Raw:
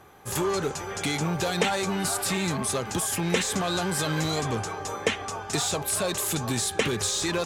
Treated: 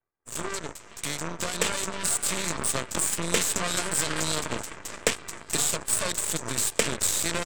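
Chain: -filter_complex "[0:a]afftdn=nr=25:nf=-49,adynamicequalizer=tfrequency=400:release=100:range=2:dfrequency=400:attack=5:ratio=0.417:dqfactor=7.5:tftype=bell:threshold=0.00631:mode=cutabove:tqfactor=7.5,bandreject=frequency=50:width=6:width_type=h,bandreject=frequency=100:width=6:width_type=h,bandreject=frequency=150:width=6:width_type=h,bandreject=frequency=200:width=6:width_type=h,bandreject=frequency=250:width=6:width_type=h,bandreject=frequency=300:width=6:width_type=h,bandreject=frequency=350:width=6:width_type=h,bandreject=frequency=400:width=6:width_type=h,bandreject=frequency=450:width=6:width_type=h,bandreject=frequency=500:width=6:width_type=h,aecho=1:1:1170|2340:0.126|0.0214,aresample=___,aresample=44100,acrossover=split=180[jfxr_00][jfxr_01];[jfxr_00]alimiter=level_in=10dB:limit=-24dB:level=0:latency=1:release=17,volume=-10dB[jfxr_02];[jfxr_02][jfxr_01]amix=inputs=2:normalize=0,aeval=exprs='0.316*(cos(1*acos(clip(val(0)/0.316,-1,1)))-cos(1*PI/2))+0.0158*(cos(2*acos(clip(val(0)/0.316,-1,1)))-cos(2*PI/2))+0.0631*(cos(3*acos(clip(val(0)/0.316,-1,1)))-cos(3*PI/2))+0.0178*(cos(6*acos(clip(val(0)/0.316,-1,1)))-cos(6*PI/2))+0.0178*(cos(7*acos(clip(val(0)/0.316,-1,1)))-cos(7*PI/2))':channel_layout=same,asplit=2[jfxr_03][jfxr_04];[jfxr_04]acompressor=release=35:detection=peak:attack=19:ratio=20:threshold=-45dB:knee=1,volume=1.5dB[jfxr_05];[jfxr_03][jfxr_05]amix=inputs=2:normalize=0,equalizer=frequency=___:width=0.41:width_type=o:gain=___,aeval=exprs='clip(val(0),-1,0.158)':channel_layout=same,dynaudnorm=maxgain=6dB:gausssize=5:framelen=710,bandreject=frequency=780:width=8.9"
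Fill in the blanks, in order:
22050, 8000, 10.5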